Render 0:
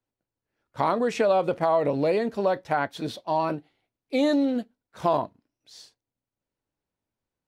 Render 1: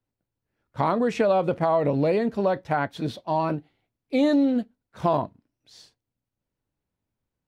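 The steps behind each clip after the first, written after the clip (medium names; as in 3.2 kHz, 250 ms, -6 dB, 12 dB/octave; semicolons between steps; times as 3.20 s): tone controls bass +7 dB, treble -4 dB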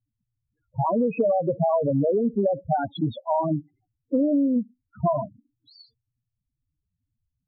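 loudest bins only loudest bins 4; compression, threshold -26 dBFS, peak gain reduction 8.5 dB; trim +7 dB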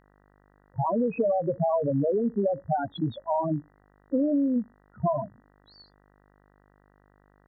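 mains buzz 50 Hz, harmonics 39, -59 dBFS -3 dB/octave; trim -3 dB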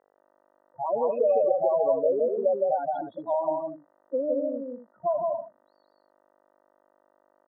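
ladder band-pass 630 Hz, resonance 45%; on a send: loudspeakers at several distances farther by 56 m -2 dB, 82 m -11 dB; on the sum: trim +8.5 dB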